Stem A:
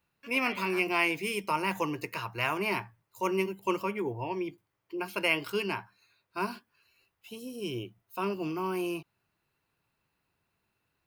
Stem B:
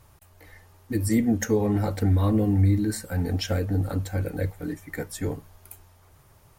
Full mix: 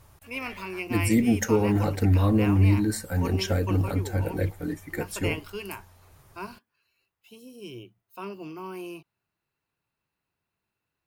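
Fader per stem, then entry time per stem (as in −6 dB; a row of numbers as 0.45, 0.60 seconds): −5.5, +0.5 decibels; 0.00, 0.00 seconds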